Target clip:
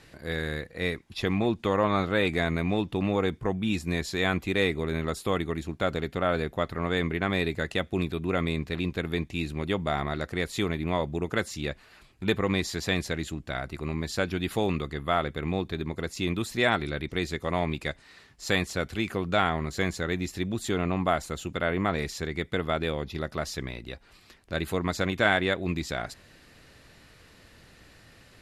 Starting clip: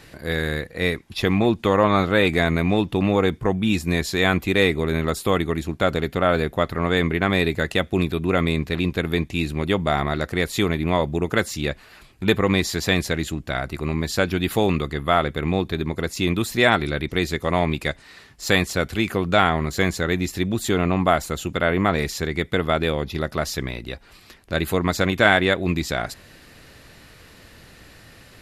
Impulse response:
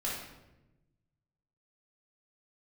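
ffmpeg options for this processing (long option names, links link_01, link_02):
-af "lowpass=11000,volume=-7dB"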